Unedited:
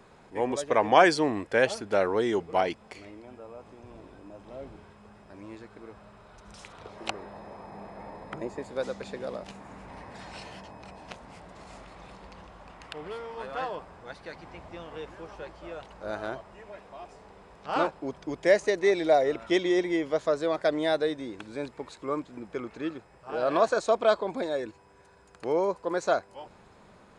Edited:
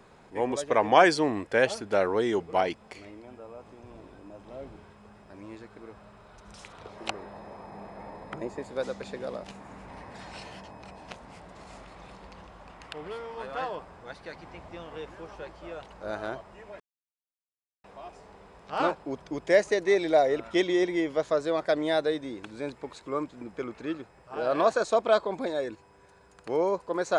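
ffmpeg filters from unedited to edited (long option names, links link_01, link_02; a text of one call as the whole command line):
ffmpeg -i in.wav -filter_complex "[0:a]asplit=2[link_01][link_02];[link_01]atrim=end=16.8,asetpts=PTS-STARTPTS,afade=type=out:start_time=16.796:duration=0.004:curve=hsin,apad=pad_dur=1.04[link_03];[link_02]atrim=start=16.8,asetpts=PTS-STARTPTS,afade=type=in:duration=0.004:curve=hsin[link_04];[link_03][link_04]concat=n=2:v=0:a=1" out.wav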